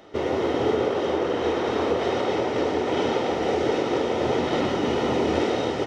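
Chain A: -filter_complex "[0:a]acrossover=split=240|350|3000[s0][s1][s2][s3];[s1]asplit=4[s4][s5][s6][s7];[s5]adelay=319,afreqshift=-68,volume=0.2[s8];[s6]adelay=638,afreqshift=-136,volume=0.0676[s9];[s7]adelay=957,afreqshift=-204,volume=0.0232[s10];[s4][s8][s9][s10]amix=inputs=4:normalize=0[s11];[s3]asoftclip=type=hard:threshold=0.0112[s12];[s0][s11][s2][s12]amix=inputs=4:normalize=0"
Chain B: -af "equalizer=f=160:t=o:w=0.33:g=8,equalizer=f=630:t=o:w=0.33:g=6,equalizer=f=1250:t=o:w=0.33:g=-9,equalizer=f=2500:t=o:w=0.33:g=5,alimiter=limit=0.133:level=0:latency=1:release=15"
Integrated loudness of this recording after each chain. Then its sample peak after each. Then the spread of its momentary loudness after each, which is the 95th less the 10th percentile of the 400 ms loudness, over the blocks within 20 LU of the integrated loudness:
-24.0 LUFS, -25.5 LUFS; -9.5 dBFS, -17.5 dBFS; 2 LU, 0 LU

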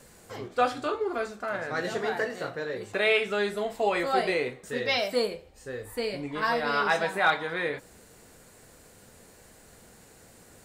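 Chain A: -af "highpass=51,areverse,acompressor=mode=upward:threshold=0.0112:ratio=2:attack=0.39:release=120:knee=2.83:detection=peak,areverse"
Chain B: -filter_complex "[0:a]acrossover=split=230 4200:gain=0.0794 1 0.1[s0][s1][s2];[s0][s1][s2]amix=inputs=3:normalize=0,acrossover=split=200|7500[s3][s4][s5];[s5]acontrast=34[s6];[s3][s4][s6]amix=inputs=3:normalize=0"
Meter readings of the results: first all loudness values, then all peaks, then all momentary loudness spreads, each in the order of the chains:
-28.5 LUFS, -29.0 LUFS; -11.5 dBFS, -10.5 dBFS; 10 LU, 10 LU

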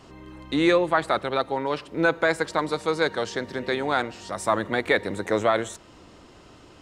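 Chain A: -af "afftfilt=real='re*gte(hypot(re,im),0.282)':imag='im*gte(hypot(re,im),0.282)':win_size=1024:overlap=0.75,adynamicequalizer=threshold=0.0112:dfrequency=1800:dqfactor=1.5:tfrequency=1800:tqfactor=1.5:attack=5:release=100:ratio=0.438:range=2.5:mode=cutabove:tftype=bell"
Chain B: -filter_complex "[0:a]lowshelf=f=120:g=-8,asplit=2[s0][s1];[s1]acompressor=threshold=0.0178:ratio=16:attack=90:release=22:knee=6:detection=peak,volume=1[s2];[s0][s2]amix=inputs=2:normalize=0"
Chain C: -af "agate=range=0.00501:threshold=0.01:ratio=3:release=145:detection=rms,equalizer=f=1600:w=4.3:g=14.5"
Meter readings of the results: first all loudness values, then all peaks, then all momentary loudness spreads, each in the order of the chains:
-27.0 LUFS, -21.5 LUFS, -20.5 LUFS; -11.0 dBFS, -3.5 dBFS, -3.5 dBFS; 11 LU, 7 LU, 10 LU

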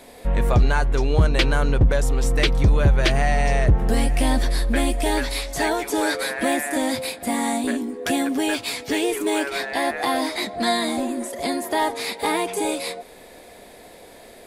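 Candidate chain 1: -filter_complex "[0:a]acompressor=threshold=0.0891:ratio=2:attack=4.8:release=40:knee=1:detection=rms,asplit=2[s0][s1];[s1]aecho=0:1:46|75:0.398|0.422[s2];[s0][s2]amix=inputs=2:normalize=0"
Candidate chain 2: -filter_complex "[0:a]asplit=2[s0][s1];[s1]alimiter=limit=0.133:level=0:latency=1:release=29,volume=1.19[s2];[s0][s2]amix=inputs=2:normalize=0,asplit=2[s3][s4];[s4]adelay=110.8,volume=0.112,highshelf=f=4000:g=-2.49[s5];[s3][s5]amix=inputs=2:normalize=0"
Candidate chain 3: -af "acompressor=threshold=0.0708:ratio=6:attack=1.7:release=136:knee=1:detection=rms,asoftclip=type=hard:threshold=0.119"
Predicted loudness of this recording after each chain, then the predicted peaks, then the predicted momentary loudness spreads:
-23.0 LUFS, -17.5 LUFS, -29.0 LUFS; -9.0 dBFS, -4.5 dBFS, -18.5 dBFS; 3 LU, 5 LU, 4 LU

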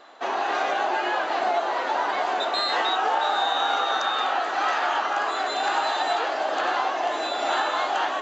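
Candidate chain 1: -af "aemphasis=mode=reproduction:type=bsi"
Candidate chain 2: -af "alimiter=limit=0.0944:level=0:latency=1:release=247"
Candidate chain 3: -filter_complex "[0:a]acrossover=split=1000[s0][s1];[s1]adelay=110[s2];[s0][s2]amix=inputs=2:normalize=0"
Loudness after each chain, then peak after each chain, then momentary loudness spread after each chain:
-24.5 LUFS, -29.5 LUFS, -26.0 LUFS; -11.0 dBFS, -20.5 dBFS, -12.5 dBFS; 2 LU, 1 LU, 3 LU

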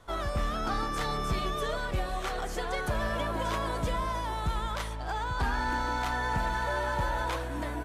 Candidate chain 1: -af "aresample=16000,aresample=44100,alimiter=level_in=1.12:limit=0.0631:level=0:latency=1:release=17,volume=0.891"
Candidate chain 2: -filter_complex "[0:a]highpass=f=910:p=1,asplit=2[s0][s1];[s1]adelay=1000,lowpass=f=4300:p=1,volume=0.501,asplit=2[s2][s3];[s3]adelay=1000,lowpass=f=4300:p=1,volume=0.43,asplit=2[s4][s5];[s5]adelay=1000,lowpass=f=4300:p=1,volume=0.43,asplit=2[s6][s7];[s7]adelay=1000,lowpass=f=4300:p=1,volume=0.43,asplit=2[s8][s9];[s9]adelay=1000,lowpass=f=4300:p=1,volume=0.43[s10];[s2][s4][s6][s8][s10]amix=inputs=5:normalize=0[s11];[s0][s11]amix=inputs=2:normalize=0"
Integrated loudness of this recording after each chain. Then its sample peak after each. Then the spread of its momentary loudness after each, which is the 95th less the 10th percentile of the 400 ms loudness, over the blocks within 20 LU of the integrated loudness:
-33.5 LUFS, -34.5 LUFS; -25.0 dBFS, -21.5 dBFS; 3 LU, 4 LU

